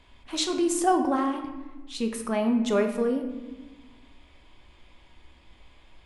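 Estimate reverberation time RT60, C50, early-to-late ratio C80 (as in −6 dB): 1.2 s, 7.5 dB, 9.5 dB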